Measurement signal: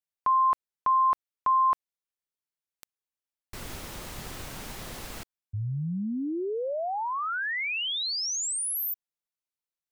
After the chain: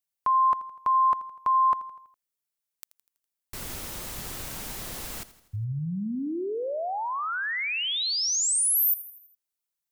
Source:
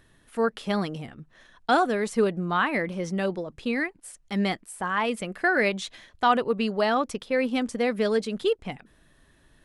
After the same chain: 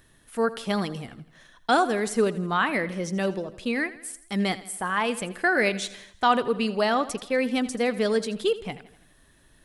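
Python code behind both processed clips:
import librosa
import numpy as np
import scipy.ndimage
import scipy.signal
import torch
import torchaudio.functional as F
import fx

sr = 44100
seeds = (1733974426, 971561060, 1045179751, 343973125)

y = fx.high_shelf(x, sr, hz=6300.0, db=9.0)
y = fx.echo_feedback(y, sr, ms=82, feedback_pct=53, wet_db=-16.5)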